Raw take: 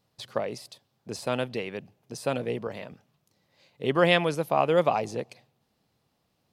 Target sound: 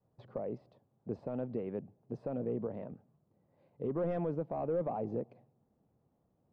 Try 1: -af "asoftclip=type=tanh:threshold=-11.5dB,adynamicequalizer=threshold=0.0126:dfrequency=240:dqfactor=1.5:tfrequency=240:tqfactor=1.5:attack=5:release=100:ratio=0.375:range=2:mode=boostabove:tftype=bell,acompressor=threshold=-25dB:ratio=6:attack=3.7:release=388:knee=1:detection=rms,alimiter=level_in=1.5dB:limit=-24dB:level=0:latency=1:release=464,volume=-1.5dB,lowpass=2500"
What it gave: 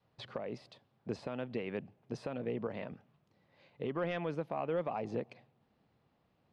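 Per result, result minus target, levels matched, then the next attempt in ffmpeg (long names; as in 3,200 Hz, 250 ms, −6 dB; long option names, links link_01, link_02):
2,000 Hz band +14.0 dB; soft clipping: distortion −9 dB
-af "asoftclip=type=tanh:threshold=-11.5dB,adynamicequalizer=threshold=0.0126:dfrequency=240:dqfactor=1.5:tfrequency=240:tqfactor=1.5:attack=5:release=100:ratio=0.375:range=2:mode=boostabove:tftype=bell,acompressor=threshold=-25dB:ratio=6:attack=3.7:release=388:knee=1:detection=rms,alimiter=level_in=1.5dB:limit=-24dB:level=0:latency=1:release=464,volume=-1.5dB,lowpass=700"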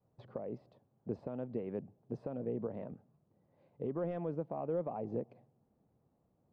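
soft clipping: distortion −9 dB
-af "asoftclip=type=tanh:threshold=-20dB,adynamicequalizer=threshold=0.0126:dfrequency=240:dqfactor=1.5:tfrequency=240:tqfactor=1.5:attack=5:release=100:ratio=0.375:range=2:mode=boostabove:tftype=bell,acompressor=threshold=-25dB:ratio=6:attack=3.7:release=388:knee=1:detection=rms,alimiter=level_in=1.5dB:limit=-24dB:level=0:latency=1:release=464,volume=-1.5dB,lowpass=700"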